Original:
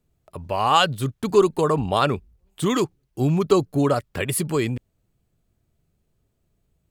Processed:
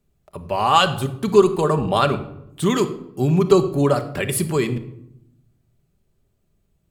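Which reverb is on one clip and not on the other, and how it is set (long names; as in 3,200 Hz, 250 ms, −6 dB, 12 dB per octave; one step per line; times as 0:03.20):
rectangular room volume 2,100 cubic metres, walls furnished, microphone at 1.2 metres
level +1 dB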